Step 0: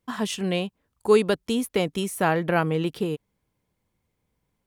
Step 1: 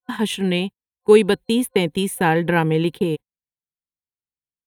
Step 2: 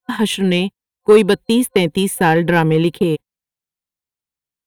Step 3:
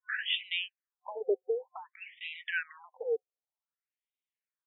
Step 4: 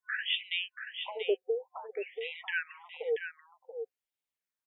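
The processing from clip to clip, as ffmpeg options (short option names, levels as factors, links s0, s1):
-af "agate=range=0.0141:threshold=0.0224:ratio=16:detection=peak,superequalizer=8b=0.282:10b=0.355:14b=0.282:15b=0.398,volume=2"
-af "acontrast=61,volume=0.891"
-af "acompressor=threshold=0.1:ratio=6,afftfilt=real='re*between(b*sr/1024,530*pow(2800/530,0.5+0.5*sin(2*PI*0.54*pts/sr))/1.41,530*pow(2800/530,0.5+0.5*sin(2*PI*0.54*pts/sr))*1.41)':imag='im*between(b*sr/1024,530*pow(2800/530,0.5+0.5*sin(2*PI*0.54*pts/sr))/1.41,530*pow(2800/530,0.5+0.5*sin(2*PI*0.54*pts/sr))*1.41)':win_size=1024:overlap=0.75,volume=0.841"
-af "aecho=1:1:683:0.398"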